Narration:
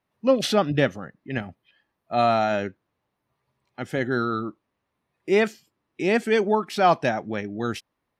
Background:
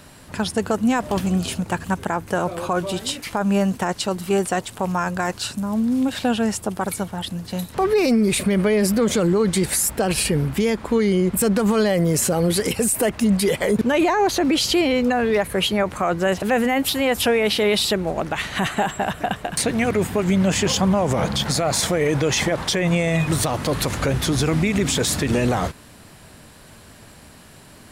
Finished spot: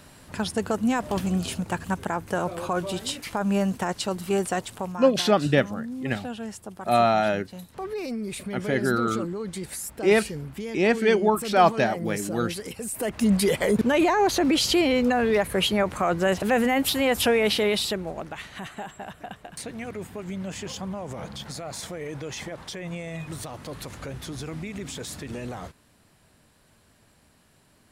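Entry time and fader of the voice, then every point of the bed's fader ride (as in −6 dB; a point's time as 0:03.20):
4.75 s, +0.5 dB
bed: 0:04.75 −4.5 dB
0:05.01 −14 dB
0:12.82 −14 dB
0:13.27 −2.5 dB
0:17.50 −2.5 dB
0:18.63 −15 dB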